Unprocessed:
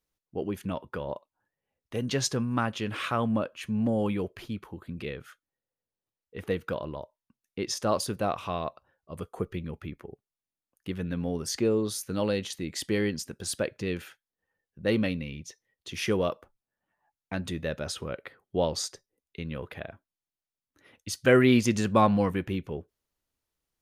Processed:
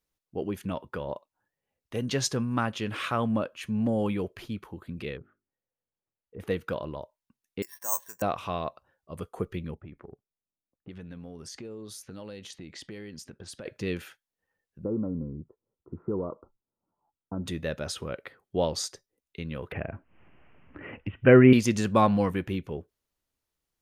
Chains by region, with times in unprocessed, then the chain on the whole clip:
0:05.17–0:06.40: mains-hum notches 50/100/150/200/250/300/350/400 Hz + treble cut that deepens with the level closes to 650 Hz, closed at −46 dBFS + high-frequency loss of the air 410 metres
0:07.62–0:08.22: pair of resonant band-passes 1,300 Hz, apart 0.72 octaves + bad sample-rate conversion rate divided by 6×, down filtered, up zero stuff
0:09.74–0:13.66: low-pass that shuts in the quiet parts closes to 540 Hz, open at −27.5 dBFS + downward compressor 5 to 1, threshold −40 dBFS
0:14.84–0:17.46: downward compressor 5 to 1, threshold −28 dBFS + Chebyshev low-pass with heavy ripple 1,400 Hz, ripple 6 dB + low-shelf EQ 480 Hz +6.5 dB
0:19.72–0:21.53: Butterworth low-pass 2,900 Hz 96 dB per octave + low-shelf EQ 440 Hz +7.5 dB + upward compression, threshold −27 dBFS
whole clip: no processing

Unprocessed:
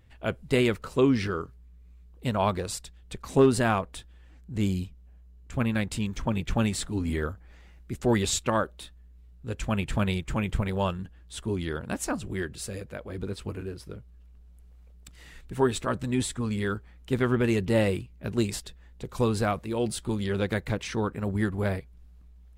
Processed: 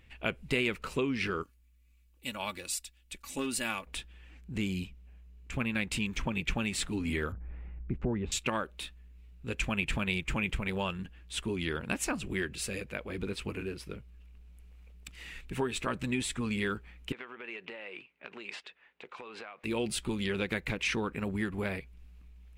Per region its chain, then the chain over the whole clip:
0:01.43–0:03.87: first-order pre-emphasis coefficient 0.8 + comb filter 3.5 ms, depth 54%
0:07.32–0:08.32: low-pass filter 1,200 Hz + low-shelf EQ 240 Hz +11 dB
0:17.12–0:19.64: band-pass filter 600–2,500 Hz + downward compressor 16 to 1, threshold −41 dBFS
whole clip: downward compressor 5 to 1, threshold −28 dBFS; graphic EQ with 15 bands 100 Hz −7 dB, 630 Hz −3 dB, 2,500 Hz +11 dB

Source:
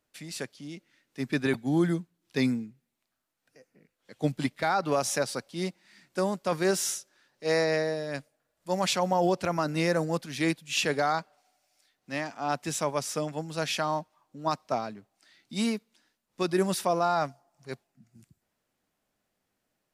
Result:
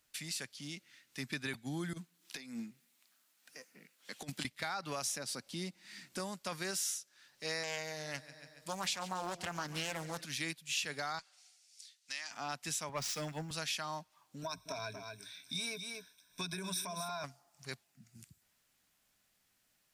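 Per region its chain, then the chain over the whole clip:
0:01.93–0:04.45: gain on one half-wave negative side −3 dB + high-pass filter 180 Hz 24 dB per octave + compressor whose output falls as the input rises −35 dBFS, ratio −0.5
0:05.11–0:06.20: parametric band 260 Hz +8 dB 2 octaves + downward compressor 1.5 to 1, threshold −34 dBFS
0:07.63–0:10.25: repeating echo 141 ms, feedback 59%, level −17.5 dB + highs frequency-modulated by the lows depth 0.43 ms
0:11.19–0:12.31: meter weighting curve ITU-R 468 + downward compressor 2.5 to 1, threshold −46 dBFS + multiband upward and downward expander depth 70%
0:12.89–0:13.51: running median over 5 samples + leveller curve on the samples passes 2 + multiband upward and downward expander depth 100%
0:14.42–0:17.24: EQ curve with evenly spaced ripples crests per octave 1.6, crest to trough 17 dB + downward compressor, threshold −28 dBFS + single-tap delay 235 ms −10.5 dB
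whole clip: guitar amp tone stack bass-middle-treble 5-5-5; downward compressor 2.5 to 1, threshold −56 dBFS; level +14.5 dB

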